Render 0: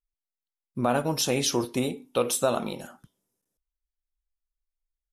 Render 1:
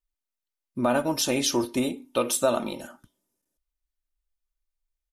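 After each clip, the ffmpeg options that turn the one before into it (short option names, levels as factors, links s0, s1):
-af "aecho=1:1:3.3:0.5"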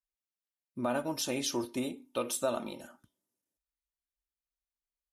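-af "highpass=48,volume=0.376"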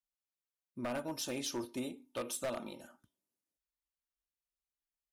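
-af "aeval=exprs='0.0562*(abs(mod(val(0)/0.0562+3,4)-2)-1)':c=same,volume=0.562"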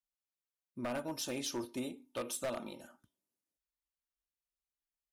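-af anull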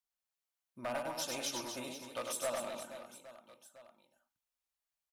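-filter_complex "[0:a]lowshelf=f=500:t=q:w=1.5:g=-7,asplit=2[s0][s1];[s1]aecho=0:1:100|250|475|812.5|1319:0.631|0.398|0.251|0.158|0.1[s2];[s0][s2]amix=inputs=2:normalize=0"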